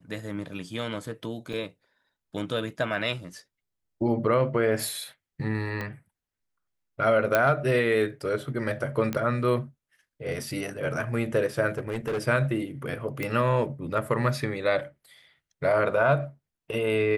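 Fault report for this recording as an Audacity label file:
1.530000	1.530000	gap 2.2 ms
5.810000	5.810000	pop -19 dBFS
7.350000	7.350000	pop -8 dBFS
9.130000	9.130000	pop -15 dBFS
11.690000	12.190000	clipped -25 dBFS
13.230000	13.230000	pop -17 dBFS

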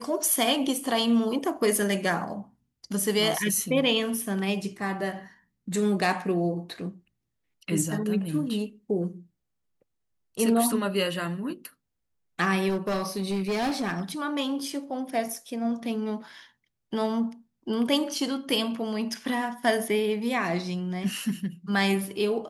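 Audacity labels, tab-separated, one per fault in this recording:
12.680000	14.000000	clipped -23.5 dBFS

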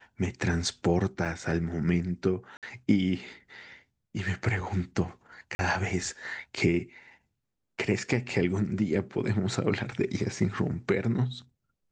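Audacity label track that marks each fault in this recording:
1.250000	1.260000	gap 6.1 ms
2.570000	2.630000	gap 57 ms
5.550000	5.590000	gap 41 ms

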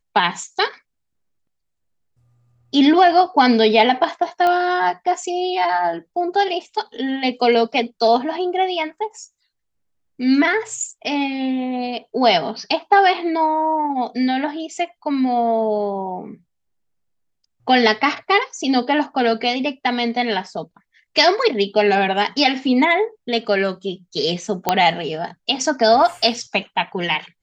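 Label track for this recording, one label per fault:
4.470000	4.470000	pop -9 dBFS
24.690000	24.690000	pop -1 dBFS

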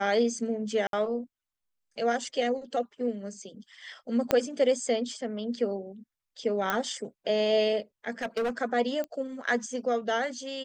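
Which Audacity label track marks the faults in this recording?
0.870000	0.930000	gap 62 ms
4.310000	4.310000	pop -10 dBFS
6.700000	6.700000	pop -13 dBFS
8.220000	8.500000	clipped -25.5 dBFS
9.040000	9.040000	pop -22 dBFS

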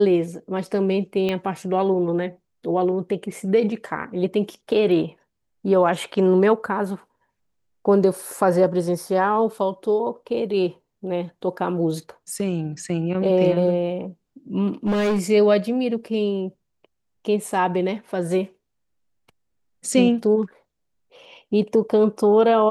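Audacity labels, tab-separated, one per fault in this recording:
1.290000	1.290000	pop -13 dBFS
14.860000	15.250000	clipped -17.5 dBFS

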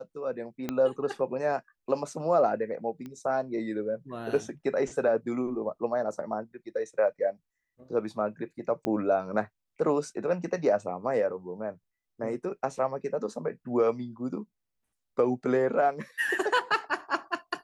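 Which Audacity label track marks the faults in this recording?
0.690000	0.690000	pop -16 dBFS
3.060000	3.060000	pop -28 dBFS
8.850000	8.850000	pop -18 dBFS

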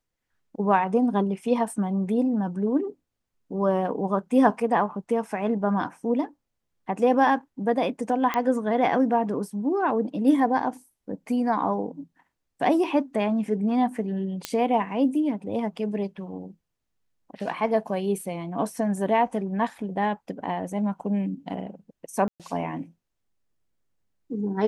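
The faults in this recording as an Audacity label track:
8.340000	8.340000	pop -12 dBFS
14.450000	14.450000	pop -11 dBFS
22.280000	22.400000	gap 0.117 s

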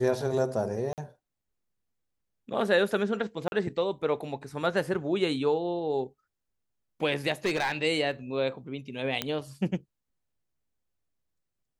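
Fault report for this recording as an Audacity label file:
0.930000	0.980000	gap 48 ms
3.480000	3.520000	gap 41 ms
7.450000	7.760000	clipped -22.5 dBFS
9.220000	9.220000	pop -12 dBFS

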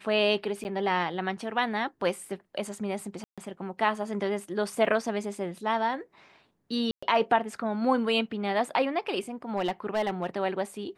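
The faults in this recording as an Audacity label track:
0.640000	0.650000	gap 9.7 ms
3.240000	3.380000	gap 0.136 s
4.850000	4.850000	gap 3 ms
6.910000	7.030000	gap 0.115 s
9.560000	10.270000	clipped -22 dBFS

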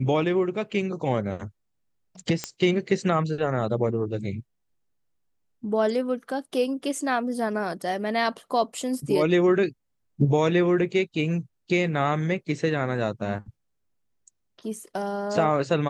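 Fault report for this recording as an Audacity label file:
2.440000	2.440000	pop -12 dBFS

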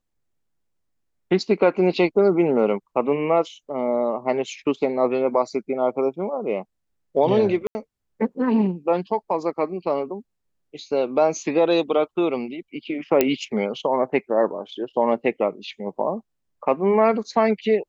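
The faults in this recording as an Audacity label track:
7.670000	7.750000	gap 80 ms
13.210000	13.210000	pop -3 dBFS

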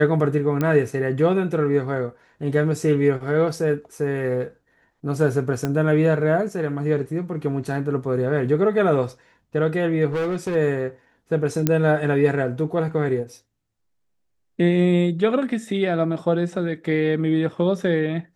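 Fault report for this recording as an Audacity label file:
0.610000	0.610000	pop -11 dBFS
5.650000	5.650000	pop -11 dBFS
10.120000	10.560000	clipped -20.5 dBFS
11.670000	11.670000	pop -5 dBFS

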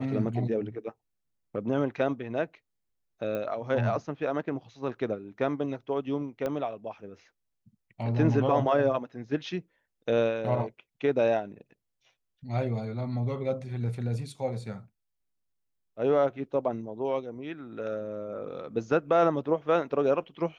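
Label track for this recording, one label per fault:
3.350000	3.350000	pop -22 dBFS
6.460000	6.460000	pop -19 dBFS

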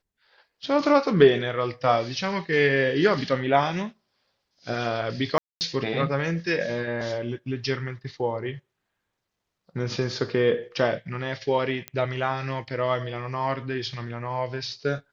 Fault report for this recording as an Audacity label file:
5.380000	5.610000	gap 0.229 s
11.880000	11.880000	pop -15 dBFS

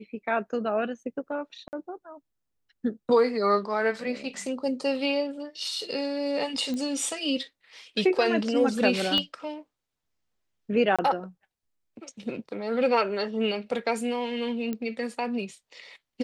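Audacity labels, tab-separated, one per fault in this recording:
1.680000	1.730000	gap 49 ms
6.740000	6.740000	pop -21 dBFS
9.180000	9.180000	pop -14 dBFS
10.960000	10.990000	gap 26 ms
14.730000	14.730000	pop -19 dBFS

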